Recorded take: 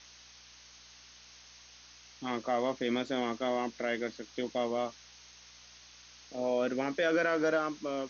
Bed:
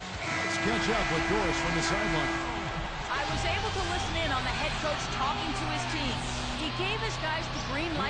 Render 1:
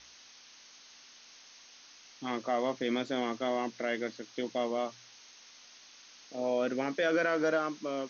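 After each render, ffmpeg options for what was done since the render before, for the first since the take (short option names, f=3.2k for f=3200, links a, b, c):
-af "bandreject=f=60:t=h:w=4,bandreject=f=120:t=h:w=4,bandreject=f=180:t=h:w=4"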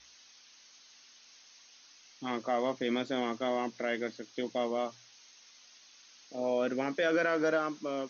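-af "afftdn=nr=6:nf=-56"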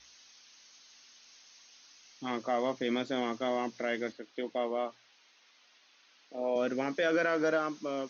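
-filter_complex "[0:a]asettb=1/sr,asplit=3[a][b][c];[a]atrim=end=4.124[d];[b]atrim=start=4.12:end=6.56,asetpts=PTS-STARTPTS,afade=t=in:d=0.004:c=qsin,afade=t=out:st=2.436:d=0.004:c=qsin,highpass=250,lowpass=3.2k[e];[c]atrim=start=6.556[f];[d][e]acrossfade=d=0.004:c1=hsin:c2=qsin[g];[g][f]acrossfade=d=0.004:c1=qsin:c2=hsin"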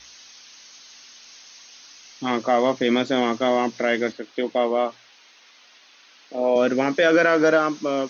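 -af "volume=11.5dB"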